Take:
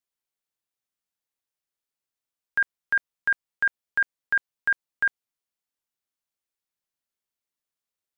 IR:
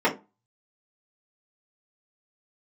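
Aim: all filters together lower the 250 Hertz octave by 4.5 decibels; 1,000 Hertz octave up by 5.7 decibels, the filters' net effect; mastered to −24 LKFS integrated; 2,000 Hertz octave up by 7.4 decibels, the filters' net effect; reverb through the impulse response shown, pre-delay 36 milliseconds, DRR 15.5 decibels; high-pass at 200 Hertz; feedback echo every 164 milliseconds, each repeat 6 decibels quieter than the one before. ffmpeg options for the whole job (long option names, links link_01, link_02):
-filter_complex "[0:a]highpass=200,equalizer=frequency=250:width_type=o:gain=-4.5,equalizer=frequency=1000:width_type=o:gain=4,equalizer=frequency=2000:width_type=o:gain=8.5,aecho=1:1:164|328|492|656|820|984:0.501|0.251|0.125|0.0626|0.0313|0.0157,asplit=2[link_01][link_02];[1:a]atrim=start_sample=2205,adelay=36[link_03];[link_02][link_03]afir=irnorm=-1:irlink=0,volume=-32dB[link_04];[link_01][link_04]amix=inputs=2:normalize=0,volume=-4.5dB"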